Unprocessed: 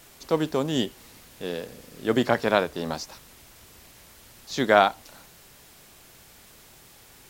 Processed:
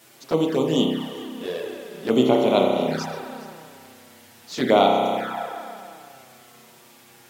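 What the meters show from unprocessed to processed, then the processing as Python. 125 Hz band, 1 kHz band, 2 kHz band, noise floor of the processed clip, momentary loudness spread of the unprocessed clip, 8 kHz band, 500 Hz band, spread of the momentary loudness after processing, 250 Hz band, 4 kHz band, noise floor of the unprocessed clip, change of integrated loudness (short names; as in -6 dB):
+3.0 dB, +2.5 dB, -4.0 dB, -51 dBFS, 17 LU, -0.5 dB, +5.0 dB, 18 LU, +6.0 dB, +3.5 dB, -52 dBFS, +3.0 dB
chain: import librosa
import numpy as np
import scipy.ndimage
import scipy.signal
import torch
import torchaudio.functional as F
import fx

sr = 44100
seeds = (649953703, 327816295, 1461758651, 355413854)

y = scipy.signal.sosfilt(scipy.signal.cheby1(2, 1.0, 180.0, 'highpass', fs=sr, output='sos'), x)
y = y + 10.0 ** (-18.5 / 20.0) * np.pad(y, (int(412 * sr / 1000.0), 0))[:len(y)]
y = fx.rev_spring(y, sr, rt60_s=2.4, pass_ms=(31,), chirp_ms=55, drr_db=-0.5)
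y = fx.env_flanger(y, sr, rest_ms=9.7, full_db=-19.5)
y = F.gain(torch.from_numpy(y), 3.5).numpy()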